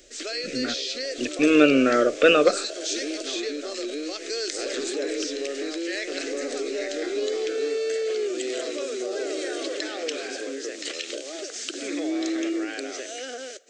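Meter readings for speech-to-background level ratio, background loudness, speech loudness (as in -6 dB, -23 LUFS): 10.5 dB, -29.5 LUFS, -19.0 LUFS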